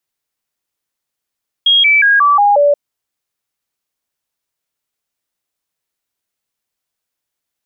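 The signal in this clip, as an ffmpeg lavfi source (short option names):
-f lavfi -i "aevalsrc='0.473*clip(min(mod(t,0.18),0.18-mod(t,0.18))/0.005,0,1)*sin(2*PI*3270*pow(2,-floor(t/0.18)/2)*mod(t,0.18))':d=1.08:s=44100"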